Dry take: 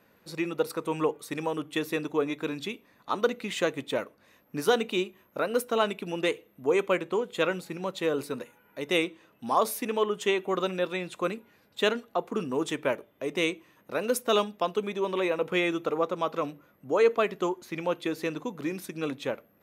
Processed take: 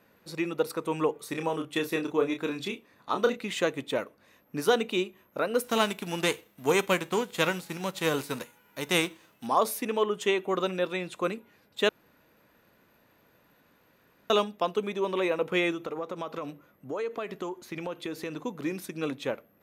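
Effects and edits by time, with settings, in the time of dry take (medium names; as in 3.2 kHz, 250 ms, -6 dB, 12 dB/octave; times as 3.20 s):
1.13–3.37 s: doubling 30 ms -6.5 dB
5.63–9.46 s: formants flattened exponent 0.6
11.89–14.30 s: room tone
15.71–18.39 s: compression 4:1, threshold -31 dBFS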